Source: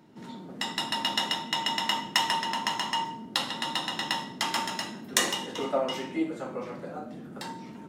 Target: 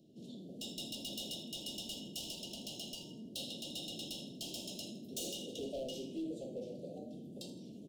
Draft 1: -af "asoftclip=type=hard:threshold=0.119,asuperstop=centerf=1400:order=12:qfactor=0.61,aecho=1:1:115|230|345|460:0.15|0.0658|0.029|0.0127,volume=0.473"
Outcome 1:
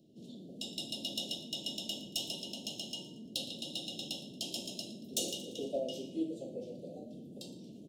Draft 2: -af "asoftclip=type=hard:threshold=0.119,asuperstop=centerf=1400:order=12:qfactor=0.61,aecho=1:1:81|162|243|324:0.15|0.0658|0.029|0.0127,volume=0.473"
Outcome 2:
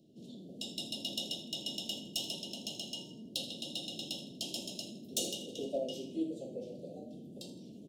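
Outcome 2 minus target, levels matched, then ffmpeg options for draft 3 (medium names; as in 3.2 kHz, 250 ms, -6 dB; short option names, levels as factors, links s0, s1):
hard clipper: distortion -11 dB
-af "asoftclip=type=hard:threshold=0.0316,asuperstop=centerf=1400:order=12:qfactor=0.61,aecho=1:1:81|162|243|324:0.15|0.0658|0.029|0.0127,volume=0.473"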